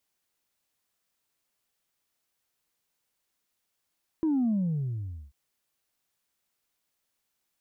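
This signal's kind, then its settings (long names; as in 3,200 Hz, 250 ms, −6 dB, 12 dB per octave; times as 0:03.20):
bass drop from 330 Hz, over 1.09 s, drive 0 dB, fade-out 0.85 s, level −23 dB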